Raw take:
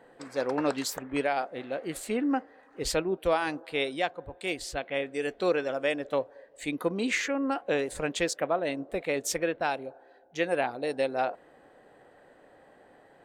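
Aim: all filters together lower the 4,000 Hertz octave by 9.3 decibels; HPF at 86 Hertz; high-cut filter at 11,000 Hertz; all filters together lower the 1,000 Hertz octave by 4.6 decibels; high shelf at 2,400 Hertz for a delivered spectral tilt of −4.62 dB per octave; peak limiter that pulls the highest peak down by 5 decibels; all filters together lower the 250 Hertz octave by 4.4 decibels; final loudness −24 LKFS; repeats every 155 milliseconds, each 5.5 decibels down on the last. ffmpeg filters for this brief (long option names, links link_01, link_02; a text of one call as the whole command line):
ffmpeg -i in.wav -af "highpass=86,lowpass=11000,equalizer=frequency=250:width_type=o:gain=-5,equalizer=frequency=1000:width_type=o:gain=-5,highshelf=frequency=2400:gain=-7.5,equalizer=frequency=4000:width_type=o:gain=-5,alimiter=limit=-23dB:level=0:latency=1,aecho=1:1:155|310|465|620|775|930|1085:0.531|0.281|0.149|0.079|0.0419|0.0222|0.0118,volume=10dB" out.wav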